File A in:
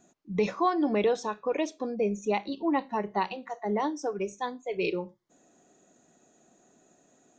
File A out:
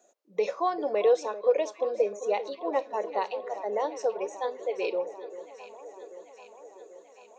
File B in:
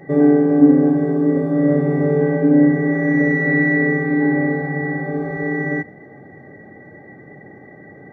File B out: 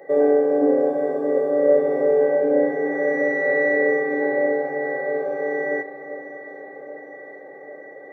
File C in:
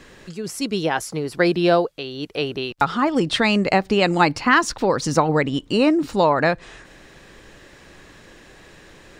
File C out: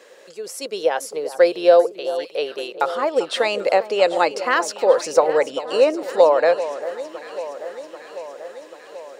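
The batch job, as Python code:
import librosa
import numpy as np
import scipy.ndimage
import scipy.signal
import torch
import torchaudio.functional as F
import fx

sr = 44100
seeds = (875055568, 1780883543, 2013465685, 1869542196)

p1 = fx.highpass_res(x, sr, hz=520.0, q=4.9)
p2 = fx.high_shelf(p1, sr, hz=4900.0, db=6.5)
p3 = p2 + fx.echo_alternate(p2, sr, ms=394, hz=1400.0, feedback_pct=80, wet_db=-12.5, dry=0)
y = p3 * 10.0 ** (-5.5 / 20.0)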